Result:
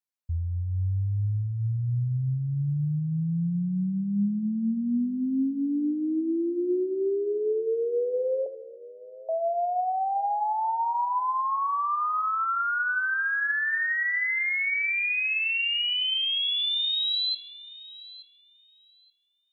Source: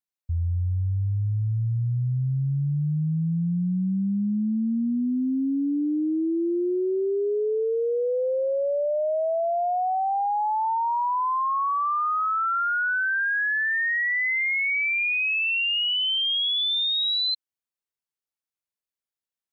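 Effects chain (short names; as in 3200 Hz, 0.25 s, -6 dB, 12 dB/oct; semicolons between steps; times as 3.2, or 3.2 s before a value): 8.46–9.29 vowel filter u; thinning echo 0.877 s, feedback 18%, high-pass 160 Hz, level -18 dB; reverb RT60 0.90 s, pre-delay 23 ms, DRR 12.5 dB; gain -2.5 dB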